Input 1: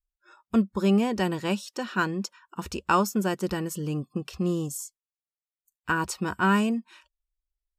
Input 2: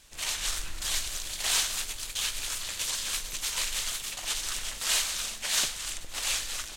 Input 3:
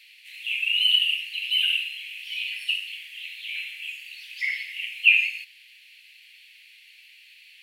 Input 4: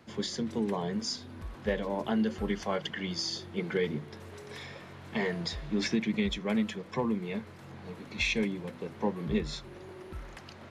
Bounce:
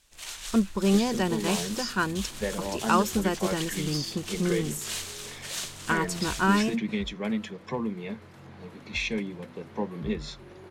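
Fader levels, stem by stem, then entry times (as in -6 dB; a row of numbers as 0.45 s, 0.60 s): -1.0 dB, -7.5 dB, mute, -0.5 dB; 0.00 s, 0.00 s, mute, 0.75 s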